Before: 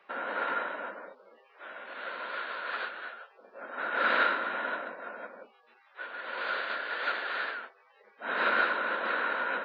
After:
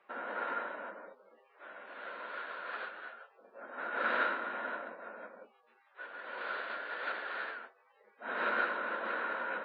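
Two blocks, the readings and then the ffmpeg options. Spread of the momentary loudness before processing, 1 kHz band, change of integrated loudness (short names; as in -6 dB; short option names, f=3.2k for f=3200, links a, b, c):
19 LU, -5.5 dB, -6.0 dB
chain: -af "aemphasis=mode=reproduction:type=75kf,flanger=delay=8.3:depth=2:regen=-58:speed=0.24:shape=sinusoidal"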